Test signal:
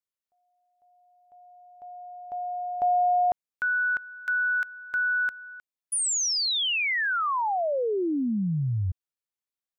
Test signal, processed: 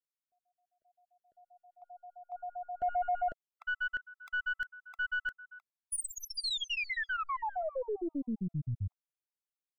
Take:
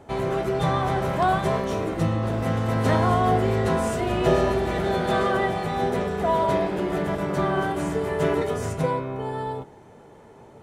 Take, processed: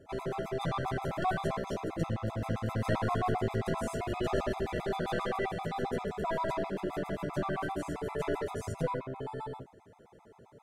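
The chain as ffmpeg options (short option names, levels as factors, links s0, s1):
-af "aeval=exprs='(tanh(6.31*val(0)+0.55)-tanh(0.55))/6.31':c=same,afftfilt=real='re*gt(sin(2*PI*7.6*pts/sr)*(1-2*mod(floor(b*sr/1024/670),2)),0)':imag='im*gt(sin(2*PI*7.6*pts/sr)*(1-2*mod(floor(b*sr/1024/670),2)),0)':win_size=1024:overlap=0.75,volume=0.631"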